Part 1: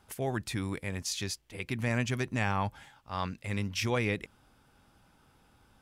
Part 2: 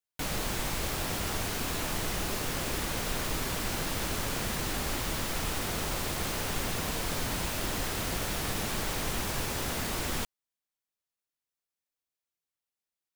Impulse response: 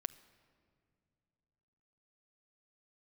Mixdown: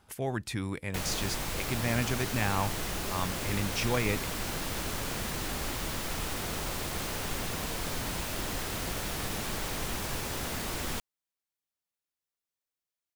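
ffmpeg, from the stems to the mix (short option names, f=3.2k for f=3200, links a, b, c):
-filter_complex "[0:a]volume=0dB[a];[1:a]adelay=750,volume=-2dB[b];[a][b]amix=inputs=2:normalize=0"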